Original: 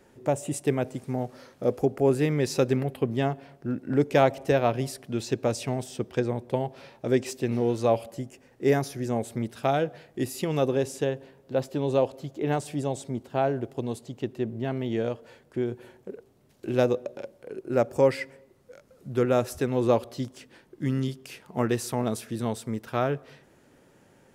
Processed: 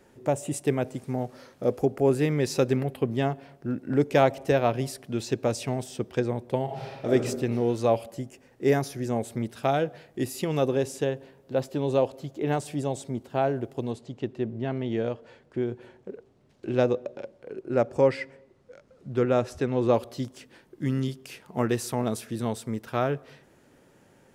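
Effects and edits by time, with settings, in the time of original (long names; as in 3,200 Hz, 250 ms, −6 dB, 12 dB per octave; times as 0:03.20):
0:06.64–0:07.12: thrown reverb, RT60 1.2 s, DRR −3 dB
0:13.91–0:19.94: high-frequency loss of the air 72 metres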